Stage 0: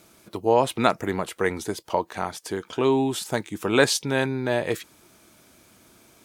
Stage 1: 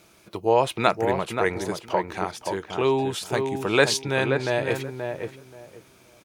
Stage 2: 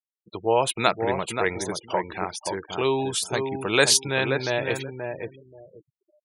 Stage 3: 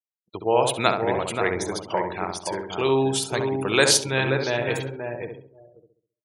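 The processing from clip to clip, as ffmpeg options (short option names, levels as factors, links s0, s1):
-filter_complex "[0:a]equalizer=f=250:t=o:w=0.33:g=-8,equalizer=f=2500:t=o:w=0.33:g=4,equalizer=f=8000:t=o:w=0.33:g=-4,equalizer=f=12500:t=o:w=0.33:g=-7,asplit=2[s0][s1];[s1]adelay=529,lowpass=f=1400:p=1,volume=0.562,asplit=2[s2][s3];[s3]adelay=529,lowpass=f=1400:p=1,volume=0.21,asplit=2[s4][s5];[s5]adelay=529,lowpass=f=1400:p=1,volume=0.21[s6];[s2][s4][s6]amix=inputs=3:normalize=0[s7];[s0][s7]amix=inputs=2:normalize=0"
-af "afftfilt=real='re*gte(hypot(re,im),0.0141)':imag='im*gte(hypot(re,im),0.0141)':win_size=1024:overlap=0.75,aemphasis=mode=production:type=75kf,volume=0.794"
-filter_complex "[0:a]agate=range=0.0224:threshold=0.00891:ratio=3:detection=peak,asplit=2[s0][s1];[s1]adelay=67,lowpass=f=1300:p=1,volume=0.631,asplit=2[s2][s3];[s3]adelay=67,lowpass=f=1300:p=1,volume=0.44,asplit=2[s4][s5];[s5]adelay=67,lowpass=f=1300:p=1,volume=0.44,asplit=2[s6][s7];[s7]adelay=67,lowpass=f=1300:p=1,volume=0.44,asplit=2[s8][s9];[s9]adelay=67,lowpass=f=1300:p=1,volume=0.44,asplit=2[s10][s11];[s11]adelay=67,lowpass=f=1300:p=1,volume=0.44[s12];[s2][s4][s6][s8][s10][s12]amix=inputs=6:normalize=0[s13];[s0][s13]amix=inputs=2:normalize=0"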